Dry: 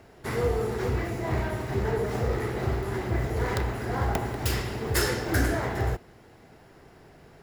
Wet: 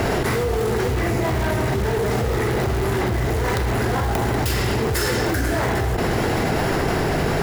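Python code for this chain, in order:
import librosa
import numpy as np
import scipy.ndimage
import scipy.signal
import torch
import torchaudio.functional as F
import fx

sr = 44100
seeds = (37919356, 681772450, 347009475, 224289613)

p1 = (np.mod(10.0 ** (25.0 / 20.0) * x + 1.0, 2.0) - 1.0) / 10.0 ** (25.0 / 20.0)
p2 = x + (p1 * librosa.db_to_amplitude(-10.5))
y = fx.env_flatten(p2, sr, amount_pct=100)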